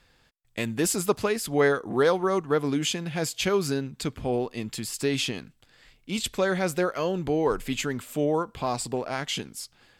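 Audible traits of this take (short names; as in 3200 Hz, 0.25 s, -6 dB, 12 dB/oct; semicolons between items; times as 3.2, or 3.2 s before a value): noise floor -64 dBFS; spectral tilt -4.0 dB/oct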